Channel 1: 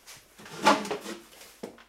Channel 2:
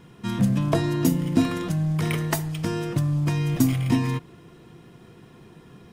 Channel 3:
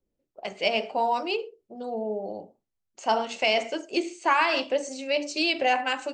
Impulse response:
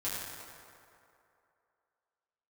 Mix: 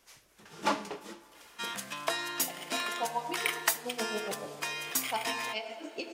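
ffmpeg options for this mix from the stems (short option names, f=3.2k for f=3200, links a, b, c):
-filter_complex "[0:a]volume=-8.5dB,asplit=2[a][b];[b]volume=-21dB[c];[1:a]highpass=1.2k,adelay=1350,volume=2dB[d];[2:a]alimiter=limit=-20.5dB:level=0:latency=1:release=426,aeval=exprs='val(0)*pow(10,-23*(0.5-0.5*cos(2*PI*7.1*n/s))/20)':c=same,adelay=2050,volume=-3.5dB,asplit=2[e][f];[f]volume=-7dB[g];[3:a]atrim=start_sample=2205[h];[c][g]amix=inputs=2:normalize=0[i];[i][h]afir=irnorm=-1:irlink=0[j];[a][d][e][j]amix=inputs=4:normalize=0"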